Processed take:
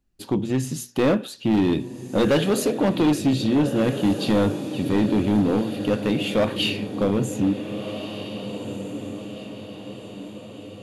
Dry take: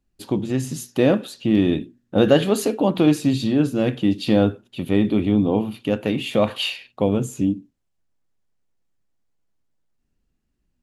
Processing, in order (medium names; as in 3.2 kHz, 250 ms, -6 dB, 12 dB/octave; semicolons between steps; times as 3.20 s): echo that smears into a reverb 1593 ms, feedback 51%, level -11 dB; overload inside the chain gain 14.5 dB